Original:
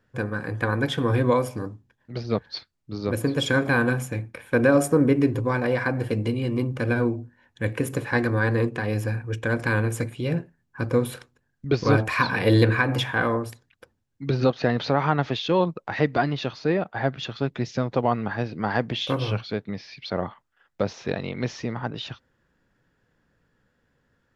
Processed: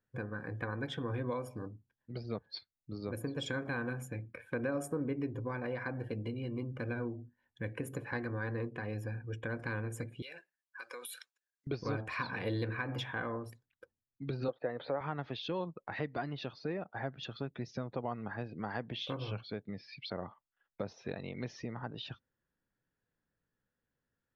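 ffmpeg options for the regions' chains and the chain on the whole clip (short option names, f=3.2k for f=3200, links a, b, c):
-filter_complex "[0:a]asettb=1/sr,asplit=3[a][b][c];[a]atrim=end=10.224[d];[b]atrim=start=10.22:end=11.67,asetpts=PTS-STARTPTS,afade=t=in:d=0.004:c=qsin,afade=t=out:st=1.446:d=0.004:c=qsin,highpass=640,tiltshelf=f=1.4k:g=-9,acompressor=threshold=-34dB:ratio=5:attack=3.2:release=140:knee=1:detection=peak[e];[c]atrim=start=11.666[f];[d][e]acrossfade=d=0.004:c1=hsin:c2=qsin[g];[g][f]acrossfade=d=0.004:c1=qsin:c2=hsin,asettb=1/sr,asplit=3[h][i][j];[h]atrim=end=14.484[k];[i]atrim=start=14.48:end=15.01,asetpts=PTS-STARTPTS,afade=t=in:d=0.004:c=qsin,afade=t=out:st=0.526:d=0.004:c=qsin,highpass=170,equalizer=f=210:t=q:w=4:g=-10,equalizer=f=530:t=q:w=4:g=9,equalizer=f=2.8k:t=q:w=4:g=-7,lowpass=f=3.6k:w=0.5412,lowpass=f=3.6k:w=1.3066,acompressor=mode=upward:threshold=-33dB:ratio=2.5:attack=3.2:release=140:knee=2.83:detection=peak,agate=range=-18dB:threshold=-39dB:ratio=16:release=100:detection=peak[l];[j]atrim=start=15.006[m];[k][l]acrossfade=d=0.004:c1=hsin:c2=qsin[n];[n][m]acrossfade=d=0.004:c1=qsin:c2=hsin,afftdn=nr=14:nf=-44,acompressor=threshold=-37dB:ratio=2,volume=-5dB"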